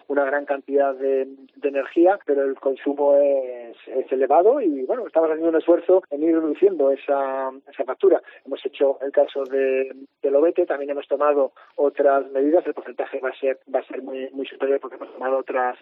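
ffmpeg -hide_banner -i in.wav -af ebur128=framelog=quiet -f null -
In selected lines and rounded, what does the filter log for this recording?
Integrated loudness:
  I:         -21.5 LUFS
  Threshold: -31.7 LUFS
Loudness range:
  LRA:         3.5 LU
  Threshold: -41.4 LUFS
  LRA low:   -23.3 LUFS
  LRA high:  -19.7 LUFS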